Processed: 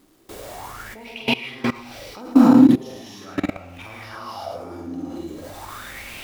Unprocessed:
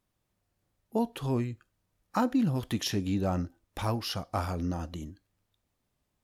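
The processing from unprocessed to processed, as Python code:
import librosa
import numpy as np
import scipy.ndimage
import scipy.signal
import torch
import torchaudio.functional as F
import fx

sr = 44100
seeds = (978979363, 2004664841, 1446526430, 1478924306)

y = x + 0.5 * 10.0 ** (-41.0 / 20.0) * np.sign(x)
y = fx.peak_eq(y, sr, hz=93.0, db=-5.0, octaves=1.5)
y = fx.doubler(y, sr, ms=46.0, db=-7)
y = fx.rev_gated(y, sr, seeds[0], gate_ms=340, shape='rising', drr_db=-6.5)
y = fx.spec_box(y, sr, start_s=1.05, length_s=1.16, low_hz=1900.0, high_hz=6100.0, gain_db=10)
y = fx.low_shelf(y, sr, hz=360.0, db=-2.0)
y = y + 10.0 ** (-6.5 / 20.0) * np.pad(y, (int(110 * sr / 1000.0), 0))[:len(y)]
y = fx.level_steps(y, sr, step_db=21)
y = fx.bell_lfo(y, sr, hz=0.4, low_hz=290.0, high_hz=2600.0, db=18)
y = y * 10.0 ** (1.0 / 20.0)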